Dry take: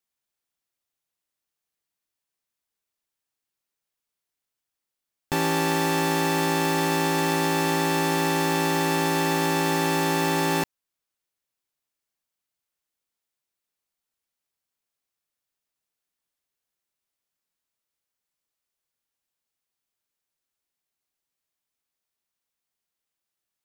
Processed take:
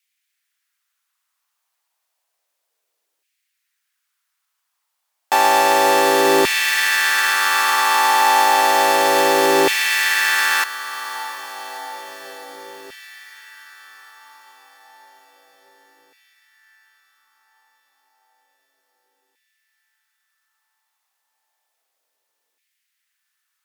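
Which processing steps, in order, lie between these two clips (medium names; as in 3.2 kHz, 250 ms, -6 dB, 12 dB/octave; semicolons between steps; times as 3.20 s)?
in parallel at +1 dB: peak limiter -20 dBFS, peak gain reduction 7.5 dB; on the sum: echo that smears into a reverb 664 ms, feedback 65%, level -13 dB; LFO high-pass saw down 0.31 Hz 410–2300 Hz; Chebyshev shaper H 2 -35 dB, 4 -37 dB, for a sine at -4.5 dBFS; trim +3.5 dB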